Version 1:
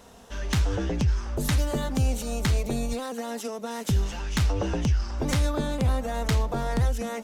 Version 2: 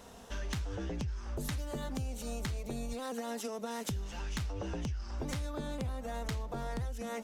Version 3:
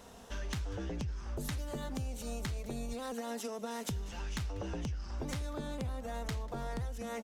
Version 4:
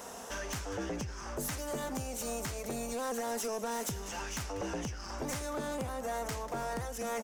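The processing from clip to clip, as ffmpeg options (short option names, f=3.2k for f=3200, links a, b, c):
-af "acompressor=threshold=-33dB:ratio=6,volume=-2dB"
-af "aecho=1:1:193:0.0841,volume=-1dB"
-filter_complex "[0:a]asplit=2[a][b];[b]highpass=f=720:p=1,volume=22dB,asoftclip=type=tanh:threshold=-23.5dB[c];[a][c]amix=inputs=2:normalize=0,lowpass=f=1.5k:p=1,volume=-6dB,aexciter=amount=2:drive=9.9:freq=5.4k,volume=-2.5dB"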